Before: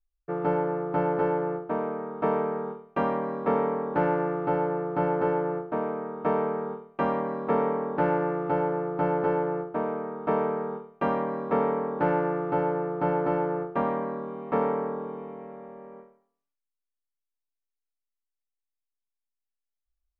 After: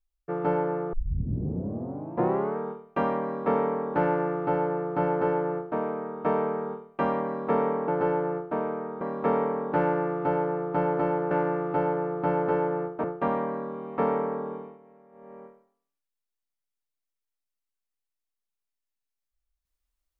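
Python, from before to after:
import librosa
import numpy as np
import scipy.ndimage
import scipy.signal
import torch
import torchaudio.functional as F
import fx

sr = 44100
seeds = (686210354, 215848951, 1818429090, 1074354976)

y = fx.edit(x, sr, fx.tape_start(start_s=0.93, length_s=1.64),
    fx.duplicate(start_s=4.04, length_s=1.73, to_s=13.58),
    fx.cut(start_s=7.88, length_s=1.23),
    fx.cut(start_s=10.24, length_s=1.04),
    fx.fade_down_up(start_s=15.08, length_s=0.81, db=-13.5, fade_s=0.24), tone=tone)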